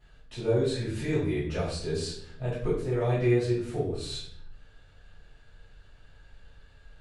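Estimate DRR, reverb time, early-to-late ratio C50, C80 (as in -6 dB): -10.5 dB, 0.70 s, 3.0 dB, 7.0 dB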